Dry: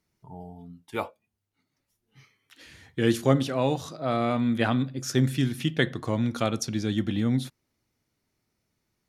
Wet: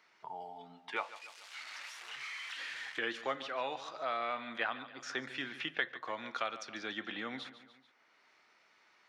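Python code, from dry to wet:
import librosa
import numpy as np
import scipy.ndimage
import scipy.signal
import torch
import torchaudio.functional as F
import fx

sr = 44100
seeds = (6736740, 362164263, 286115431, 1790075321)

y = fx.crossing_spikes(x, sr, level_db=-32.0, at=(0.96, 2.99))
y = scipy.signal.sosfilt(scipy.signal.butter(2, 1300.0, 'highpass', fs=sr, output='sos'), y)
y = fx.spacing_loss(y, sr, db_at_10k=35)
y = fx.echo_feedback(y, sr, ms=143, feedback_pct=38, wet_db=-16.0)
y = fx.band_squash(y, sr, depth_pct=70)
y = F.gain(torch.from_numpy(y), 5.0).numpy()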